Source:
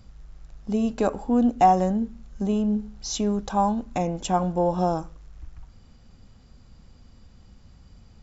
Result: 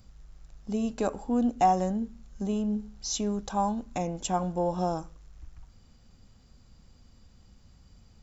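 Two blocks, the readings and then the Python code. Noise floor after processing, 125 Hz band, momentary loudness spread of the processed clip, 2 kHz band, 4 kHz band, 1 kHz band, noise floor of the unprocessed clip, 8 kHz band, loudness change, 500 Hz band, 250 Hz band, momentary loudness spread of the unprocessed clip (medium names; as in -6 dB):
-58 dBFS, -5.5 dB, 11 LU, -4.5 dB, -2.5 dB, -5.5 dB, -53 dBFS, no reading, -5.5 dB, -5.5 dB, -5.5 dB, 12 LU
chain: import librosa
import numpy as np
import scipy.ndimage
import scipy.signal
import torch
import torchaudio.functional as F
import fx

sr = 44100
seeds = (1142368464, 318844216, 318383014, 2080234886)

y = fx.high_shelf(x, sr, hz=6400.0, db=10.0)
y = y * 10.0 ** (-5.5 / 20.0)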